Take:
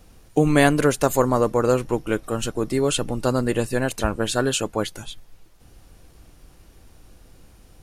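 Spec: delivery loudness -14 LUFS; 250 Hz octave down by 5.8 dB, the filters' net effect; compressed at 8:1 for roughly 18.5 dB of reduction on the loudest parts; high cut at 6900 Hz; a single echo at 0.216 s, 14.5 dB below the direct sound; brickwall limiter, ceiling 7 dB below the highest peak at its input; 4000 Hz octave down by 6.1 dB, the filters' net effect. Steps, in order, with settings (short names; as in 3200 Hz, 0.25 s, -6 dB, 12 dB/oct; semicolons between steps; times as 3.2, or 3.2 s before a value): LPF 6900 Hz; bell 250 Hz -7.5 dB; bell 4000 Hz -8 dB; compressor 8:1, threshold -35 dBFS; limiter -30 dBFS; echo 0.216 s -14.5 dB; gain +28.5 dB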